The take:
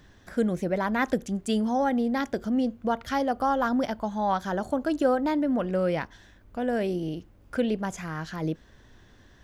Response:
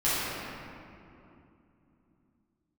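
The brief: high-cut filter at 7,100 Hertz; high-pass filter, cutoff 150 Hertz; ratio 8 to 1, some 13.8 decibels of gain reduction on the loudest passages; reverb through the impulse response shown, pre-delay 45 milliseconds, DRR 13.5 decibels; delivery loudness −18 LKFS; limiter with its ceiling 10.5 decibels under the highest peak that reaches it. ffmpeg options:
-filter_complex "[0:a]highpass=150,lowpass=7100,acompressor=threshold=-34dB:ratio=8,alimiter=level_in=10.5dB:limit=-24dB:level=0:latency=1,volume=-10.5dB,asplit=2[link_01][link_02];[1:a]atrim=start_sample=2205,adelay=45[link_03];[link_02][link_03]afir=irnorm=-1:irlink=0,volume=-27dB[link_04];[link_01][link_04]amix=inputs=2:normalize=0,volume=25dB"

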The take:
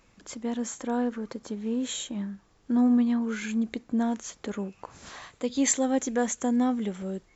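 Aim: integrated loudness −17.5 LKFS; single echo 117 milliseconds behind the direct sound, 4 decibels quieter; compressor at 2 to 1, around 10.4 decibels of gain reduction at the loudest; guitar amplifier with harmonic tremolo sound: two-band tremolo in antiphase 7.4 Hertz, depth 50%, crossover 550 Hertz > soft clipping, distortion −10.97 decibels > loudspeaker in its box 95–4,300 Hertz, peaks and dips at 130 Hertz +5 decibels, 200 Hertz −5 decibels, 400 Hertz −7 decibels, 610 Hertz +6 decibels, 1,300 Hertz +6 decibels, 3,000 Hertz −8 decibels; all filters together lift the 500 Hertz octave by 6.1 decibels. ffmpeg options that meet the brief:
ffmpeg -i in.wav -filter_complex "[0:a]equalizer=frequency=500:width_type=o:gain=6.5,acompressor=threshold=-37dB:ratio=2,aecho=1:1:117:0.631,acrossover=split=550[link_01][link_02];[link_01]aeval=exprs='val(0)*(1-0.5/2+0.5/2*cos(2*PI*7.4*n/s))':channel_layout=same[link_03];[link_02]aeval=exprs='val(0)*(1-0.5/2-0.5/2*cos(2*PI*7.4*n/s))':channel_layout=same[link_04];[link_03][link_04]amix=inputs=2:normalize=0,asoftclip=threshold=-34dB,highpass=95,equalizer=frequency=130:width_type=q:width=4:gain=5,equalizer=frequency=200:width_type=q:width=4:gain=-5,equalizer=frequency=400:width_type=q:width=4:gain=-7,equalizer=frequency=610:width_type=q:width=4:gain=6,equalizer=frequency=1300:width_type=q:width=4:gain=6,equalizer=frequency=3000:width_type=q:width=4:gain=-8,lowpass=frequency=4300:width=0.5412,lowpass=frequency=4300:width=1.3066,volume=24.5dB" out.wav

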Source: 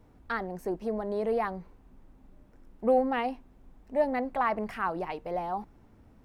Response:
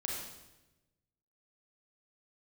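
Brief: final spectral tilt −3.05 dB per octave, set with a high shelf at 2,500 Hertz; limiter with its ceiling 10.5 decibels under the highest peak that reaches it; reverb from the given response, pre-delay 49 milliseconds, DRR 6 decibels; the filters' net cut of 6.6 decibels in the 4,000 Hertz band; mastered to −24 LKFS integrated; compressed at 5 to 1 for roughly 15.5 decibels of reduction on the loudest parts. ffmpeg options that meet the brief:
-filter_complex "[0:a]highshelf=frequency=2500:gain=-3.5,equalizer=frequency=4000:width_type=o:gain=-7,acompressor=threshold=-37dB:ratio=5,alimiter=level_in=12dB:limit=-24dB:level=0:latency=1,volume=-12dB,asplit=2[link_01][link_02];[1:a]atrim=start_sample=2205,adelay=49[link_03];[link_02][link_03]afir=irnorm=-1:irlink=0,volume=-8dB[link_04];[link_01][link_04]amix=inputs=2:normalize=0,volume=20.5dB"

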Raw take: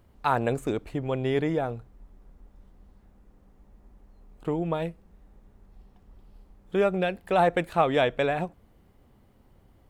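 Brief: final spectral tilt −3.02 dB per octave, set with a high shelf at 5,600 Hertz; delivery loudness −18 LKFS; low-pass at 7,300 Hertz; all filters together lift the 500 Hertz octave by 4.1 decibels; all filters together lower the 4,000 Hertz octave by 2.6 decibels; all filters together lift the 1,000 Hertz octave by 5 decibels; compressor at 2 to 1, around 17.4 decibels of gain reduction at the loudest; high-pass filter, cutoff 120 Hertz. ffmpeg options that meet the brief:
ffmpeg -i in.wav -af "highpass=120,lowpass=7300,equalizer=frequency=500:width_type=o:gain=3.5,equalizer=frequency=1000:width_type=o:gain=5.5,equalizer=frequency=4000:width_type=o:gain=-5.5,highshelf=frequency=5600:gain=6,acompressor=threshold=-46dB:ratio=2,volume=21dB" out.wav

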